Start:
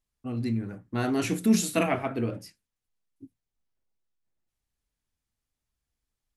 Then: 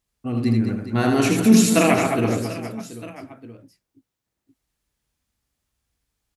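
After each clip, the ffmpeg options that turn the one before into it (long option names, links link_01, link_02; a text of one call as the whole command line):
ffmpeg -i in.wav -filter_complex "[0:a]highpass=41,asplit=2[link_01][link_02];[link_02]aecho=0:1:80|208|412.8|740.5|1265:0.631|0.398|0.251|0.158|0.1[link_03];[link_01][link_03]amix=inputs=2:normalize=0,volume=7dB" out.wav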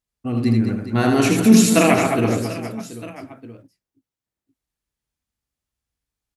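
ffmpeg -i in.wav -af "agate=range=-10dB:threshold=-46dB:ratio=16:detection=peak,volume=2dB" out.wav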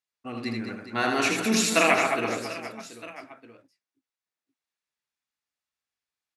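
ffmpeg -i in.wav -af "bandpass=frequency=2300:width_type=q:width=0.5:csg=0,bandreject=frequency=3100:width=18" out.wav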